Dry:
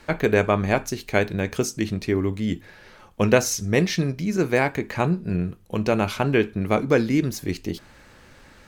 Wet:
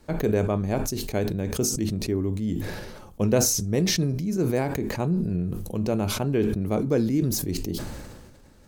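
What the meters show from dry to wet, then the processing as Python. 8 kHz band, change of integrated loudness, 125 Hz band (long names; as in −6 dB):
+3.5 dB, −2.5 dB, −0.5 dB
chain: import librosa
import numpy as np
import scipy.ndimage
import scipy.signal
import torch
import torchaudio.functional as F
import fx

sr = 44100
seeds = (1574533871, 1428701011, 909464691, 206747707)

y = fx.peak_eq(x, sr, hz=2000.0, db=-13.5, octaves=2.5)
y = fx.sustainer(y, sr, db_per_s=36.0)
y = y * librosa.db_to_amplitude(-2.0)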